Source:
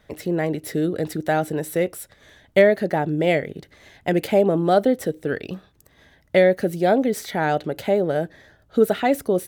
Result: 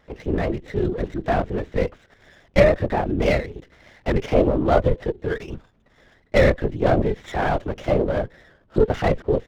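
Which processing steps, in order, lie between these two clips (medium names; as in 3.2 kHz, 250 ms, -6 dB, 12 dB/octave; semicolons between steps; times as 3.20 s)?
LPC vocoder at 8 kHz whisper; sliding maximum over 5 samples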